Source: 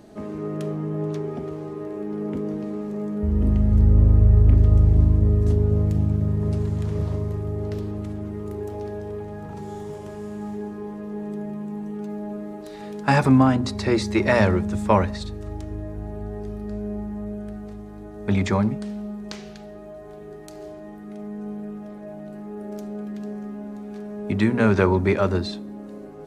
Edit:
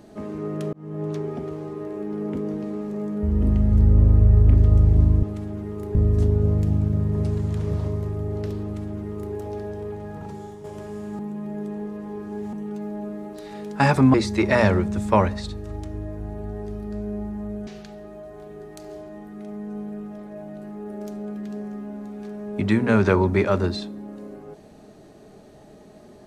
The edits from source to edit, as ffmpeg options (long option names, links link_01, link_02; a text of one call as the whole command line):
ffmpeg -i in.wav -filter_complex "[0:a]asplit=9[link_01][link_02][link_03][link_04][link_05][link_06][link_07][link_08][link_09];[link_01]atrim=end=0.73,asetpts=PTS-STARTPTS,afade=type=out:start_time=0.726:duration=0.004:curve=hsin[link_10];[link_02]atrim=start=0.73:end=5.232,asetpts=PTS-STARTPTS,afade=type=in:duration=0.51:curve=qsin[link_11];[link_03]atrim=start=7.908:end=8.632[link_12];[link_04]atrim=start=5.228:end=9.92,asetpts=PTS-STARTPTS,afade=type=out:start_time=4.302:duration=0.39:silence=0.375837[link_13];[link_05]atrim=start=9.92:end=10.472,asetpts=PTS-STARTPTS,afade=type=in:duration=0.004:curve=hsin:silence=0.375837[link_14];[link_06]atrim=start=10.468:end=11.812,asetpts=PTS-STARTPTS,areverse[link_15];[link_07]atrim=start=11.808:end=13.422[link_16];[link_08]atrim=start=13.908:end=17.442[link_17];[link_09]atrim=start=19.378[link_18];[link_10][link_11]concat=n=2:v=0:a=1[link_19];[link_19][link_12]acrossfade=duration=0.004:curve1=hsin:curve2=hsin[link_20];[link_13][link_14]concat=n=2:v=0:a=1[link_21];[link_20][link_21]acrossfade=duration=0.004:curve1=hsin:curve2=hsin[link_22];[link_22][link_15]acrossfade=duration=0.004:curve1=hsin:curve2=hsin[link_23];[link_23][link_16]acrossfade=duration=0.004:curve1=hsin:curve2=hsin[link_24];[link_24][link_17]acrossfade=duration=0.004:curve1=hsin:curve2=hsin[link_25];[link_25][link_18]acrossfade=duration=0.004:curve1=hsin:curve2=hsin" out.wav